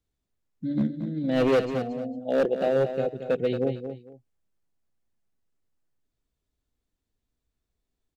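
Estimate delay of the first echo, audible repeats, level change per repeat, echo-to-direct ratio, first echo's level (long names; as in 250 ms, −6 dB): 226 ms, 2, −13.0 dB, −9.0 dB, −9.0 dB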